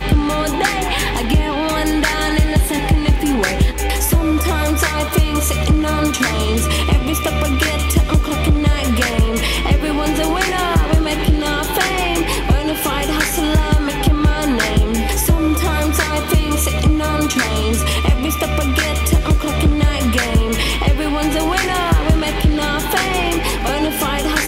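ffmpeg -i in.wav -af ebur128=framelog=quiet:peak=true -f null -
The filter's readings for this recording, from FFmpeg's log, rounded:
Integrated loudness:
  I:         -16.6 LUFS
  Threshold: -26.6 LUFS
Loudness range:
  LRA:         0.5 LU
  Threshold: -36.5 LUFS
  LRA low:   -16.8 LUFS
  LRA high:  -16.3 LUFS
True peak:
  Peak:       -2.1 dBFS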